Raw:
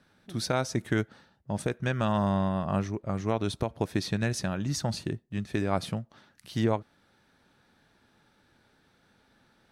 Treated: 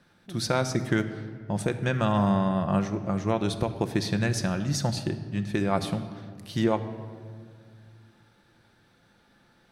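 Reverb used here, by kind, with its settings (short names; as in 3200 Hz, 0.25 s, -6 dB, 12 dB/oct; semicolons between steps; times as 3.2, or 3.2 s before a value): shoebox room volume 3300 m³, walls mixed, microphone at 0.84 m; gain +2 dB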